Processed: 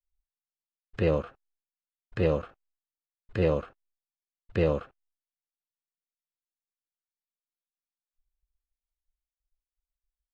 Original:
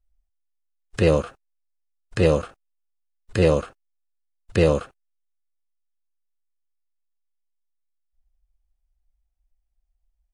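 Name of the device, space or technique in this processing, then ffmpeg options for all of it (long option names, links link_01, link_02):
hearing-loss simulation: -af "lowpass=3000,agate=range=-33dB:threshold=-59dB:ratio=3:detection=peak,volume=-7dB"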